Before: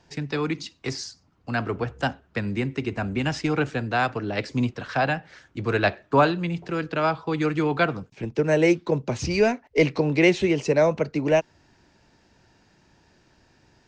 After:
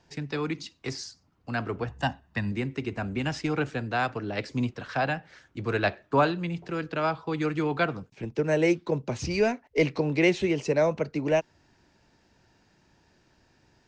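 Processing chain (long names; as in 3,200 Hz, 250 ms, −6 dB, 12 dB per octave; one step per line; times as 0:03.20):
0:01.88–0:02.52: comb filter 1.1 ms, depth 64%
level −4 dB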